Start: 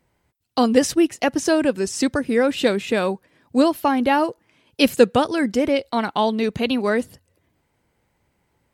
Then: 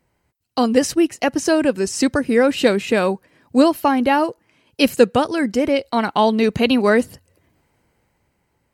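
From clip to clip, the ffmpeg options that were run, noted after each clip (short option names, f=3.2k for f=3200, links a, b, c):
-af "dynaudnorm=f=110:g=17:m=7dB,bandreject=f=3.5k:w=11"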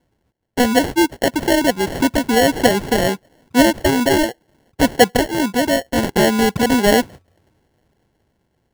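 -af "acrusher=samples=36:mix=1:aa=0.000001,volume=1dB"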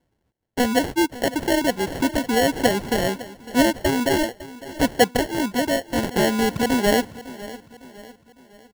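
-af "aecho=1:1:555|1110|1665|2220:0.141|0.0622|0.0273|0.012,volume=-5dB"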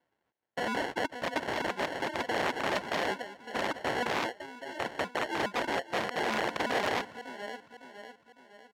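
-af "aeval=exprs='(mod(8.91*val(0)+1,2)-1)/8.91':c=same,bandpass=f=1.4k:t=q:w=0.69:csg=0"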